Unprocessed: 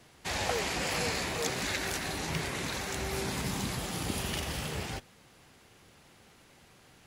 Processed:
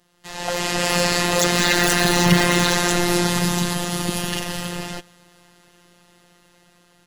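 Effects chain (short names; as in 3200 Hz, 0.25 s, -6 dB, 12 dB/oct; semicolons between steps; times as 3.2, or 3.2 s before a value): Doppler pass-by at 2.25, 8 m/s, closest 5.4 m; notch 2300 Hz, Q 10; robotiser 175 Hz; hard clip -22.5 dBFS, distortion -17 dB; AGC gain up to 14 dB; gain +7.5 dB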